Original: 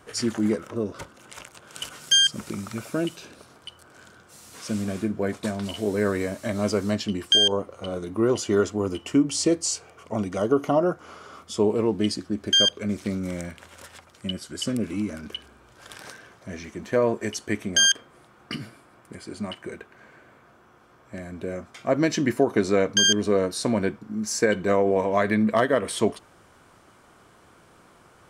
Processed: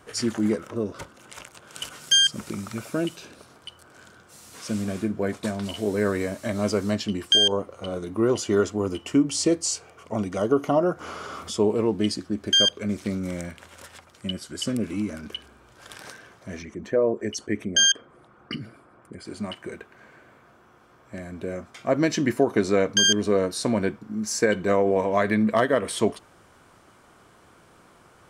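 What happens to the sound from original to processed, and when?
10.78–11.57 s: upward compressor, threshold -26 dBFS
16.62–19.25 s: resonances exaggerated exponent 1.5

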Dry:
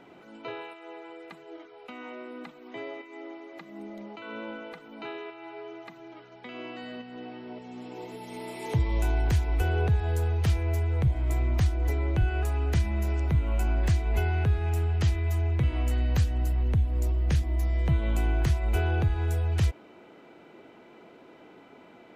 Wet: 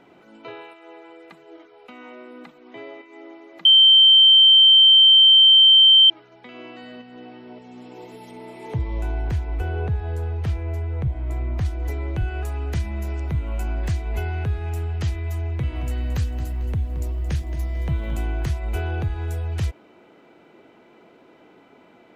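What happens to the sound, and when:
2.58–3.08 s: low-pass 6.3 kHz
3.65–6.10 s: bleep 3.12 kHz -8.5 dBFS
8.31–11.65 s: treble shelf 3.5 kHz -11.5 dB
15.53–18.23 s: bit-crushed delay 223 ms, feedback 35%, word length 9-bit, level -12.5 dB

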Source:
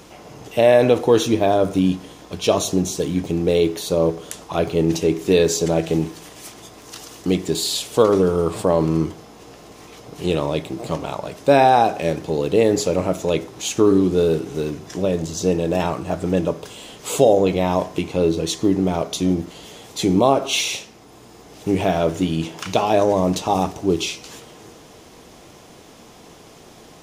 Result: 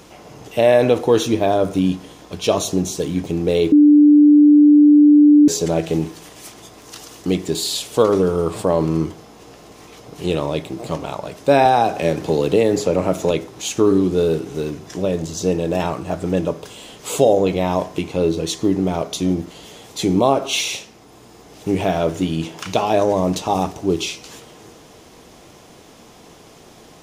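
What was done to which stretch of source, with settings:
3.72–5.48 s: bleep 295 Hz -6 dBFS
11.65–13.31 s: three bands compressed up and down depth 70%

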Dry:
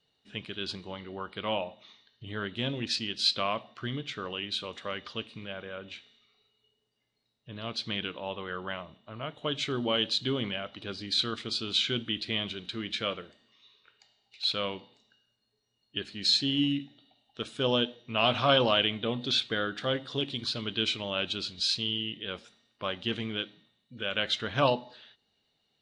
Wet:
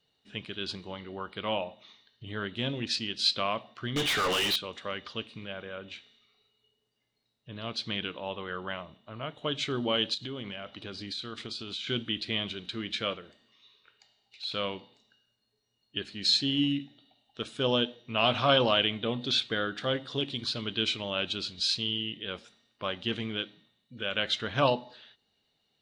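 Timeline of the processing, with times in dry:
3.96–4.56 s: overdrive pedal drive 33 dB, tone 7.4 kHz, clips at -20.5 dBFS
10.14–11.87 s: compression, threshold -34 dBFS
13.14–14.52 s: compression 1.5:1, threshold -45 dBFS

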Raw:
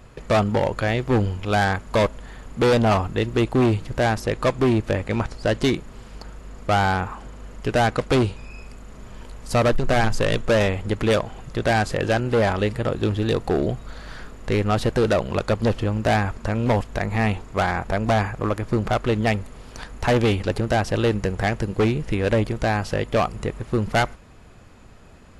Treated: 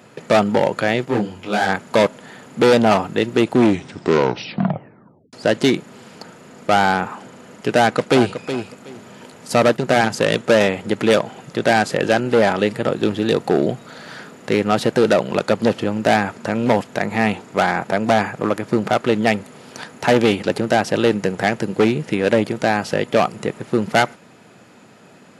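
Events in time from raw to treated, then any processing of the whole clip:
1.05–1.69 s: detune thickener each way 53 cents
3.52 s: tape stop 1.81 s
7.78–8.33 s: echo throw 370 ms, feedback 20%, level -10 dB
whole clip: high-pass 150 Hz 24 dB/octave; band-stop 1.1 kHz, Q 11; trim +5 dB

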